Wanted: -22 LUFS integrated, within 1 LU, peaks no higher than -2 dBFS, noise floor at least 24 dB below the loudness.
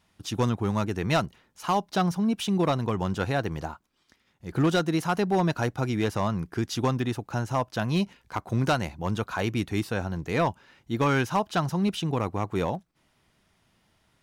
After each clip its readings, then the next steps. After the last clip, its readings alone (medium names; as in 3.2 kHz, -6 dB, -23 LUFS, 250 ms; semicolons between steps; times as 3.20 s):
clipped samples 0.6%; clipping level -17.0 dBFS; loudness -27.5 LUFS; peak level -17.0 dBFS; loudness target -22.0 LUFS
-> clip repair -17 dBFS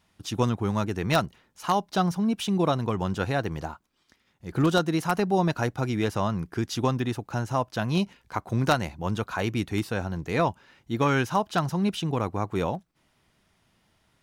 clipped samples 0.0%; loudness -27.0 LUFS; peak level -8.0 dBFS; loudness target -22.0 LUFS
-> trim +5 dB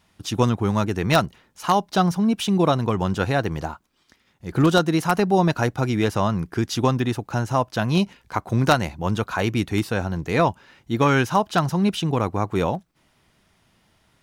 loudness -22.0 LUFS; peak level -3.0 dBFS; noise floor -64 dBFS